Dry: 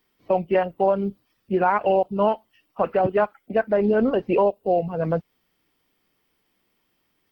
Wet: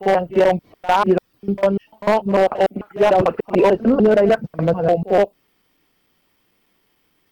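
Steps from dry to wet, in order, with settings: slices in reverse order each 0.148 s, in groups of 6; dynamic EQ 2200 Hz, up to -6 dB, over -39 dBFS, Q 1.1; wavefolder -13.5 dBFS; pre-echo 51 ms -17 dB; gain +6.5 dB

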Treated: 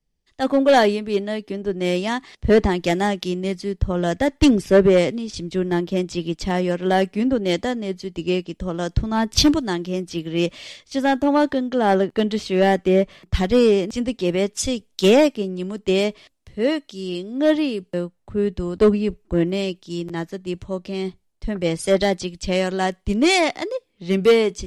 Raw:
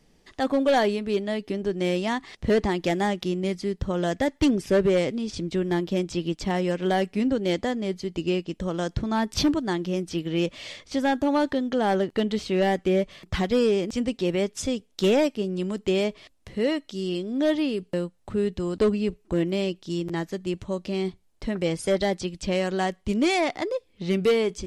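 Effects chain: three-band expander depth 70%; gain +4.5 dB

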